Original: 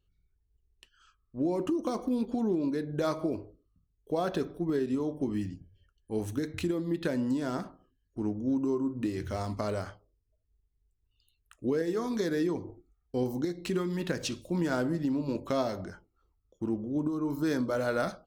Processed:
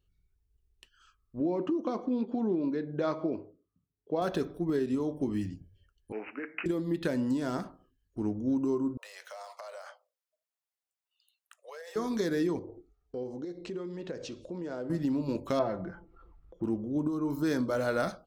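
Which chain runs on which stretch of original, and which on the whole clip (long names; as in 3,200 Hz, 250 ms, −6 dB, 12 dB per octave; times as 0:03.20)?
0:01.40–0:04.22: high-pass filter 150 Hz + high-frequency loss of the air 190 metres + one half of a high-frequency compander decoder only
0:06.12–0:06.66: high-pass filter 220 Hz 24 dB per octave + bad sample-rate conversion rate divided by 8×, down none, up filtered + spectral tilt +4.5 dB per octave
0:08.97–0:11.96: Butterworth high-pass 520 Hz 72 dB per octave + downward compressor, threshold −41 dBFS
0:12.59–0:14.90: low-pass filter 7,100 Hz 24 dB per octave + parametric band 480 Hz +11.5 dB 1.2 octaves + downward compressor 2 to 1, threshold −46 dBFS
0:15.59–0:16.64: low-pass filter 1,800 Hz + comb filter 5.9 ms, depth 59% + upward compression, threshold −41 dBFS
whole clip: no processing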